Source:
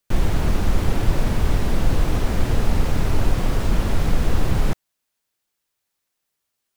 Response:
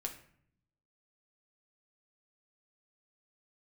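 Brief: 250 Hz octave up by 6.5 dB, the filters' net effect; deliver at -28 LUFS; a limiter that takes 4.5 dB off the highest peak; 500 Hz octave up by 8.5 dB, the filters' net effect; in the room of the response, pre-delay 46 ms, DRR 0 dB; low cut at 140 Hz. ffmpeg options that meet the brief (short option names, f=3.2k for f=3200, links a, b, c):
-filter_complex "[0:a]highpass=140,equalizer=f=250:t=o:g=7,equalizer=f=500:t=o:g=8.5,alimiter=limit=-14dB:level=0:latency=1,asplit=2[a][b];[1:a]atrim=start_sample=2205,adelay=46[c];[b][c]afir=irnorm=-1:irlink=0,volume=0.5dB[d];[a][d]amix=inputs=2:normalize=0,volume=-7.5dB"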